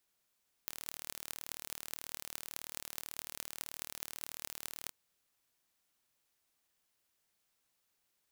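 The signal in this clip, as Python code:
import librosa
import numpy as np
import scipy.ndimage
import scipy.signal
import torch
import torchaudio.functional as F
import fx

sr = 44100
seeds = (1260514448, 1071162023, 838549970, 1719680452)

y = fx.impulse_train(sr, length_s=4.22, per_s=38.2, accent_every=8, level_db=-10.5)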